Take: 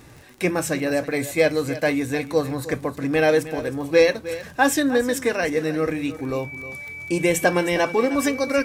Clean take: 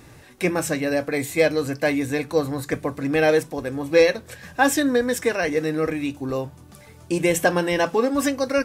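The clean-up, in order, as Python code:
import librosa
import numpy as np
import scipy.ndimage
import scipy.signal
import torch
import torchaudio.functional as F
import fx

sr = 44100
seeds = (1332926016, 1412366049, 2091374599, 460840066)

y = fx.fix_declick_ar(x, sr, threshold=6.5)
y = fx.notch(y, sr, hz=2300.0, q=30.0)
y = fx.fix_echo_inverse(y, sr, delay_ms=311, level_db=-14.5)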